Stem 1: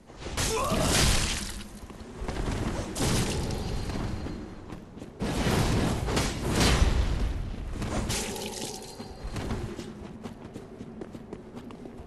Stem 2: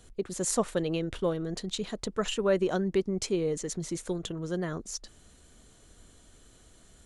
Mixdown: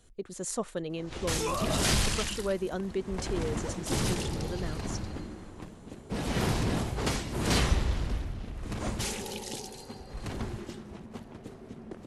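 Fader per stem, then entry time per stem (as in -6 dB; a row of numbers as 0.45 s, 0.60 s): -3.0 dB, -5.5 dB; 0.90 s, 0.00 s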